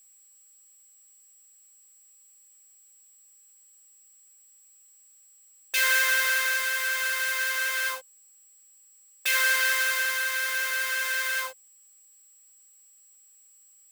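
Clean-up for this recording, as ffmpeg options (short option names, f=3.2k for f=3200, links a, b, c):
-af "bandreject=f=7.7k:w=30,agate=range=-21dB:threshold=-49dB"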